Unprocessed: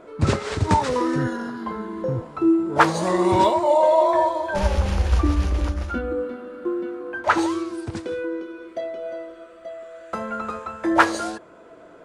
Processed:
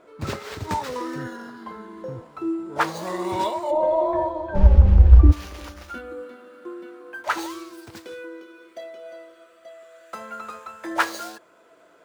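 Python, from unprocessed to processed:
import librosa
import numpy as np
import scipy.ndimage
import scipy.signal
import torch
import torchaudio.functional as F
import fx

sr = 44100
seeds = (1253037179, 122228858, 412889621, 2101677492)

y = scipy.signal.medfilt(x, 5)
y = fx.tilt_eq(y, sr, slope=fx.steps((0.0, 1.5), (3.7, -4.0), (5.31, 3.0)))
y = y * 10.0 ** (-6.5 / 20.0)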